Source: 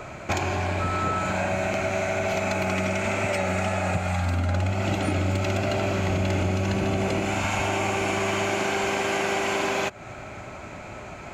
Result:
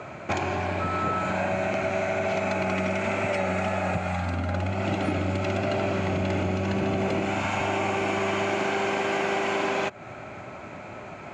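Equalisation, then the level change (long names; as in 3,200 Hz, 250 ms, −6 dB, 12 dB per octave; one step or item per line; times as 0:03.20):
high-pass filter 110 Hz 12 dB per octave
low-pass filter 8,700 Hz 12 dB per octave
high-shelf EQ 4,700 Hz −10 dB
0.0 dB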